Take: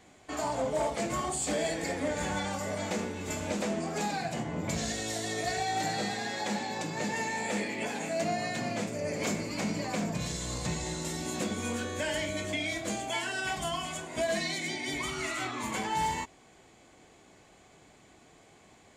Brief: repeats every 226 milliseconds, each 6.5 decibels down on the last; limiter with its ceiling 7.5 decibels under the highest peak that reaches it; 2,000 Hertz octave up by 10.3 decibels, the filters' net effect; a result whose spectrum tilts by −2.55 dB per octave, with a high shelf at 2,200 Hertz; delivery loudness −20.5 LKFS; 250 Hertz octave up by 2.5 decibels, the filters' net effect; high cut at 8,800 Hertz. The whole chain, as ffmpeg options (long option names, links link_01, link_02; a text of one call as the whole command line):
ffmpeg -i in.wav -af "lowpass=8800,equalizer=frequency=250:width_type=o:gain=3,equalizer=frequency=2000:width_type=o:gain=8.5,highshelf=frequency=2200:gain=7,alimiter=limit=-20dB:level=0:latency=1,aecho=1:1:226|452|678|904|1130|1356:0.473|0.222|0.105|0.0491|0.0231|0.0109,volume=7dB" out.wav